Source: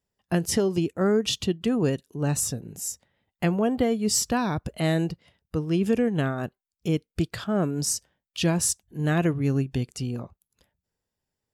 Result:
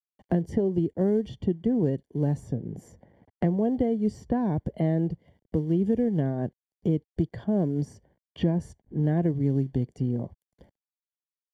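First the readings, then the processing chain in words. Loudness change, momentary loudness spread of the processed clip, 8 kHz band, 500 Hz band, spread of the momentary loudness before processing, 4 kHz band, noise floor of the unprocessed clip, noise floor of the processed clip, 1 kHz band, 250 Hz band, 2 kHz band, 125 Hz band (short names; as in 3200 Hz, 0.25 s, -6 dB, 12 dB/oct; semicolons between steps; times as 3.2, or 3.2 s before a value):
-1.5 dB, 8 LU, under -25 dB, -2.0 dB, 10 LU, under -15 dB, under -85 dBFS, under -85 dBFS, -6.0 dB, 0.0 dB, -14.0 dB, +0.5 dB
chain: companded quantiser 6-bit; running mean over 34 samples; three-band squash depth 70%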